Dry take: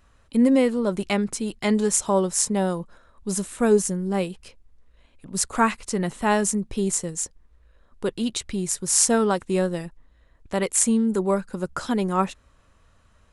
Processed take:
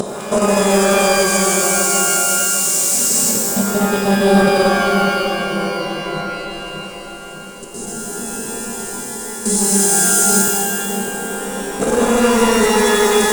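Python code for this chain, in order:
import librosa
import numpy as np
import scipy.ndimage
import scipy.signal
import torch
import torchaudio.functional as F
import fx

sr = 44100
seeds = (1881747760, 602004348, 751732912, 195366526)

p1 = fx.spec_swells(x, sr, rise_s=0.74)
p2 = fx.graphic_eq(p1, sr, hz=(125, 250, 500, 1000, 2000, 4000, 8000), db=(-4, 4, 7, -8, -6, 5, 9))
p3 = fx.paulstretch(p2, sr, seeds[0], factor=7.7, window_s=0.1, from_s=2.04)
p4 = fx.fold_sine(p3, sr, drive_db=9, ceiling_db=-4.0)
p5 = p3 + (p4 * 10.0 ** (-10.0 / 20.0))
p6 = fx.dynamic_eq(p5, sr, hz=330.0, q=0.75, threshold_db=-21.0, ratio=4.0, max_db=-4)
p7 = fx.level_steps(p6, sr, step_db=15)
p8 = p7 + fx.echo_split(p7, sr, split_hz=1300.0, low_ms=603, high_ms=206, feedback_pct=52, wet_db=-7, dry=0)
p9 = fx.rider(p8, sr, range_db=4, speed_s=2.0)
p10 = fx.rev_shimmer(p9, sr, seeds[1], rt60_s=1.4, semitones=12, shimmer_db=-2, drr_db=3.0)
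y = p10 * 10.0 ** (-3.0 / 20.0)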